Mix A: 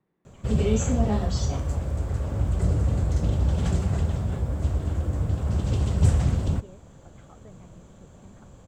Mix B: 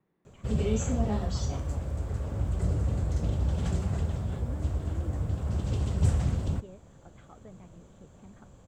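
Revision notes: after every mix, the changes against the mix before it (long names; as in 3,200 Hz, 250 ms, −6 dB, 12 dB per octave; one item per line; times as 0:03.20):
background −5.0 dB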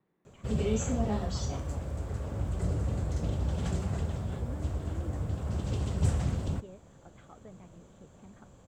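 master: add low-shelf EQ 110 Hz −5 dB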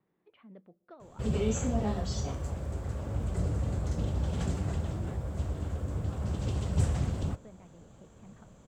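speech: send −6.5 dB
background: entry +0.75 s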